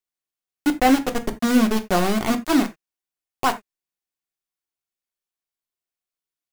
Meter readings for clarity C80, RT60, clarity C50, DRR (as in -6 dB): 24.0 dB, not exponential, 16.5 dB, 5.5 dB